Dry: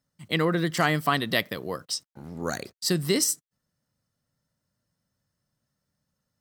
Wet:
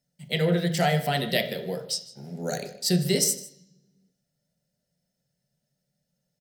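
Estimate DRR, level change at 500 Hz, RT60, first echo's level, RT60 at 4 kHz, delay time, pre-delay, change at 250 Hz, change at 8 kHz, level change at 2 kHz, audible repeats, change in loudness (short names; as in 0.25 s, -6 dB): 3.0 dB, +2.0 dB, 0.65 s, -19.5 dB, 0.75 s, 0.155 s, 3 ms, +0.5 dB, +1.0 dB, -3.0 dB, 1, +0.5 dB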